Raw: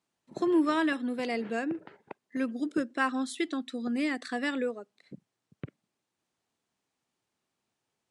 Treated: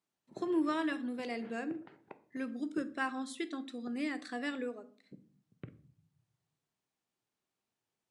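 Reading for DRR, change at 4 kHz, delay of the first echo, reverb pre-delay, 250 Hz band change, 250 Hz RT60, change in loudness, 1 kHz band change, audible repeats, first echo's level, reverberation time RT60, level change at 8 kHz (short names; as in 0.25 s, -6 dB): 11.0 dB, -6.5 dB, none, 3 ms, -6.5 dB, 0.95 s, -6.5 dB, -6.5 dB, none, none, 0.45 s, -6.5 dB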